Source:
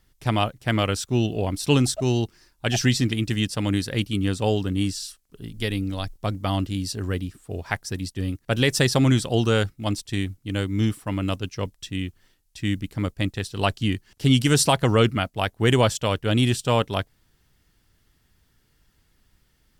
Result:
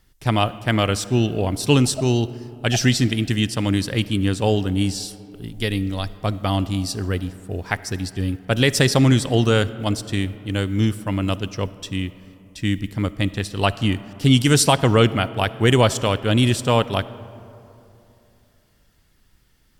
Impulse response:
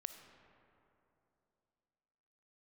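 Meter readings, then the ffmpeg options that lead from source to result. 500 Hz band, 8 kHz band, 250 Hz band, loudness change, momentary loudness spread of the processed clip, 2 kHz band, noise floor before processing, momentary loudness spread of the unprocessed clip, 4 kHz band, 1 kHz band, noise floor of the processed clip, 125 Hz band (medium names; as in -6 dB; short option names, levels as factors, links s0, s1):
+3.5 dB, +3.0 dB, +3.5 dB, +3.5 dB, 11 LU, +3.0 dB, -66 dBFS, 11 LU, +3.0 dB, +3.5 dB, -59 dBFS, +3.5 dB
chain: -filter_complex "[0:a]asplit=2[s0][s1];[1:a]atrim=start_sample=2205[s2];[s1][s2]afir=irnorm=-1:irlink=0,volume=1[s3];[s0][s3]amix=inputs=2:normalize=0,volume=0.891"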